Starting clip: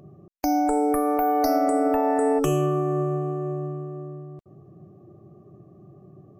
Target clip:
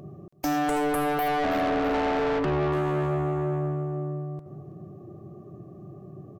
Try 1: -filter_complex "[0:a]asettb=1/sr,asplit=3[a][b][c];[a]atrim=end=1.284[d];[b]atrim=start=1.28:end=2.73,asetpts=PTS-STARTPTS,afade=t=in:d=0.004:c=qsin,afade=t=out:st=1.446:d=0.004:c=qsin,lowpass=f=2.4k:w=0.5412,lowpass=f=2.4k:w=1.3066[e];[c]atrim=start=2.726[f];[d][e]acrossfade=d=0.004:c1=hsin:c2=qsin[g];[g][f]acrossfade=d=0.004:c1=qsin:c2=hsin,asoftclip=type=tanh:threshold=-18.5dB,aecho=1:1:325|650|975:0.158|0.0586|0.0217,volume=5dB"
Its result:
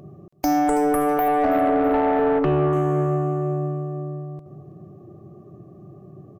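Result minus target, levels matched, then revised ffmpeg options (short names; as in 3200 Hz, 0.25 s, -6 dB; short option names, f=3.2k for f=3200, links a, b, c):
soft clip: distortion -9 dB
-filter_complex "[0:a]asettb=1/sr,asplit=3[a][b][c];[a]atrim=end=1.284[d];[b]atrim=start=1.28:end=2.73,asetpts=PTS-STARTPTS,afade=t=in:d=0.004:c=qsin,afade=t=out:st=1.446:d=0.004:c=qsin,lowpass=f=2.4k:w=0.5412,lowpass=f=2.4k:w=1.3066[e];[c]atrim=start=2.726[f];[d][e]acrossfade=d=0.004:c1=hsin:c2=qsin[g];[g][f]acrossfade=d=0.004:c1=qsin:c2=hsin,asoftclip=type=tanh:threshold=-28dB,aecho=1:1:325|650|975:0.158|0.0586|0.0217,volume=5dB"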